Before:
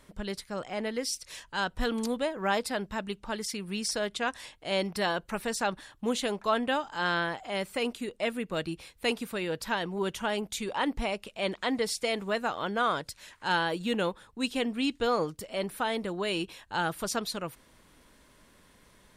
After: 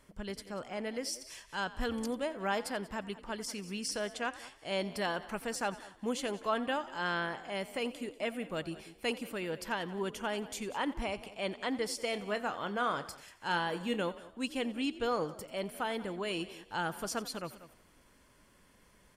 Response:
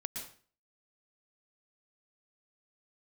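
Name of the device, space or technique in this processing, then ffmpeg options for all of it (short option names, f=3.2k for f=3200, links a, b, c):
ducked delay: -filter_complex "[0:a]asettb=1/sr,asplit=3[a][b][c];[a]atrim=end=12.104[d];[b]atrim=start=12.1:end=14.02,asetpts=PTS-STARTPTS,afade=t=in:d=0.004:c=qsin,afade=t=out:st=1.916:d=0.004:c=qsin,asplit=2[e][f];[f]adelay=29,volume=-12dB[g];[e][g]amix=inputs=2:normalize=0,atrim=end_sample=84672[h];[c]atrim=start=14.016[i];[d][h]acrossfade=d=0.004:c1=hsin:c2=qsin[j];[j][i]acrossfade=d=0.004:c1=qsin:c2=hsin,bandreject=f=3.8k:w=7.1,asplit=5[k][l][m][n][o];[l]adelay=88,afreqshift=48,volume=-17.5dB[p];[m]adelay=176,afreqshift=96,volume=-23.7dB[q];[n]adelay=264,afreqshift=144,volume=-29.9dB[r];[o]adelay=352,afreqshift=192,volume=-36.1dB[s];[k][p][q][r][s]amix=inputs=5:normalize=0,asplit=3[t][u][v];[u]adelay=191,volume=-8.5dB[w];[v]apad=whole_len=869340[x];[w][x]sidechaincompress=threshold=-37dB:ratio=8:attack=8.2:release=692[y];[t][y]amix=inputs=2:normalize=0,volume=-5dB"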